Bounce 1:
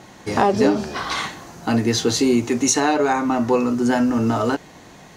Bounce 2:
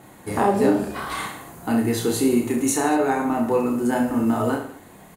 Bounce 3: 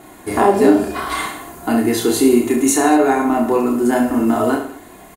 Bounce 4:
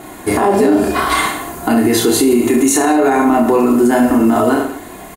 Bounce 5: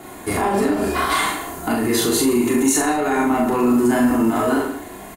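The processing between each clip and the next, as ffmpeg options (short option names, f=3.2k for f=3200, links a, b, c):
-af "aemphasis=mode=reproduction:type=75kf,aecho=1:1:30|66|109.2|161|223.2:0.631|0.398|0.251|0.158|0.1,aexciter=amount=15.1:drive=7.4:freq=8.5k,volume=-4dB"
-af "equalizer=f=110:t=o:w=0.52:g=-7.5,aecho=1:1:2.9:0.47,volume=5.5dB"
-af "alimiter=limit=-12dB:level=0:latency=1:release=61,volume=8dB"
-filter_complex "[0:a]acrossover=split=240|1000[a][b][c];[b]asoftclip=type=tanh:threshold=-15dB[d];[a][d][c]amix=inputs=3:normalize=0,asplit=2[e][f];[f]adelay=41,volume=-4dB[g];[e][g]amix=inputs=2:normalize=0,volume=-5dB"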